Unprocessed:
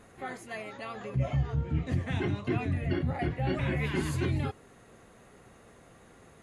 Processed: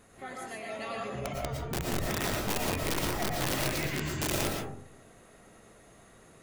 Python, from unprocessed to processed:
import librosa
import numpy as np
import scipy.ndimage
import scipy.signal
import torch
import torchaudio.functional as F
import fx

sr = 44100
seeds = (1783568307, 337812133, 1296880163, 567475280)

y = fx.over_compress(x, sr, threshold_db=-33.0, ratio=-1.0, at=(0.69, 1.62))
y = fx.cheby_ripple(y, sr, hz=7700.0, ripple_db=3, at=(3.68, 4.19), fade=0.02)
y = (np.mod(10.0 ** (23.5 / 20.0) * y + 1.0, 2.0) - 1.0) / 10.0 ** (23.5 / 20.0)
y = fx.high_shelf(y, sr, hz=4200.0, db=7.5)
y = fx.rev_freeverb(y, sr, rt60_s=0.66, hf_ratio=0.3, predelay_ms=75, drr_db=-0.5)
y = y * librosa.db_to_amplitude(-4.5)